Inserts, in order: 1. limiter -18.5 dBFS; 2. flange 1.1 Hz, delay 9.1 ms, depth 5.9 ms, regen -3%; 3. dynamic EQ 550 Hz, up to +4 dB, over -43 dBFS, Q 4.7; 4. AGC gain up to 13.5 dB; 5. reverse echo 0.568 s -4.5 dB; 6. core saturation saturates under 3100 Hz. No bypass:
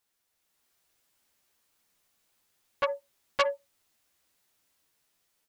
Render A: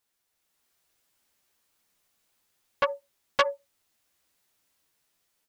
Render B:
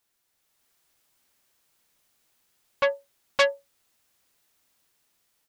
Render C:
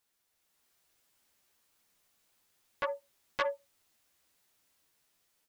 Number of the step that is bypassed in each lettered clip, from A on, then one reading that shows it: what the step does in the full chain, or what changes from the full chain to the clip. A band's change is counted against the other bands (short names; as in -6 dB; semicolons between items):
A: 1, crest factor change +2.0 dB; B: 2, 1 kHz band -5.0 dB; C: 3, momentary loudness spread change -2 LU